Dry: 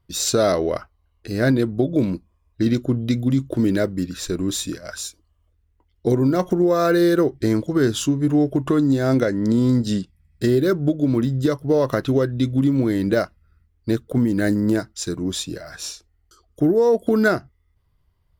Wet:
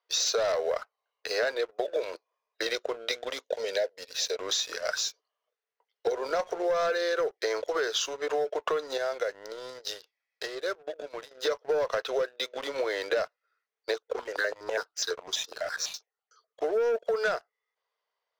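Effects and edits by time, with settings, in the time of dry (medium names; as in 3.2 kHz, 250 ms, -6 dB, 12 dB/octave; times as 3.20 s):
3.44–4.37 s: static phaser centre 330 Hz, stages 6
8.97–11.31 s: compression 2:1, threshold -34 dBFS
13.94–16.64 s: stepped phaser 12 Hz 520–2400 Hz
whole clip: Chebyshev band-pass 450–6400 Hz, order 5; waveshaping leveller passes 2; compression, threshold -26 dBFS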